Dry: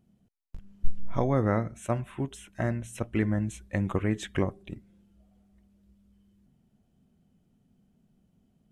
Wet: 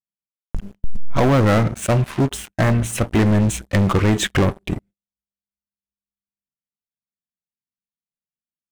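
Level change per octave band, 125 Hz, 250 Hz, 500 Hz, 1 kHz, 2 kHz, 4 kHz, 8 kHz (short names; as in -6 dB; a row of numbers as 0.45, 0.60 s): +12.5, +11.0, +10.5, +12.0, +13.0, +18.5, +17.0 dB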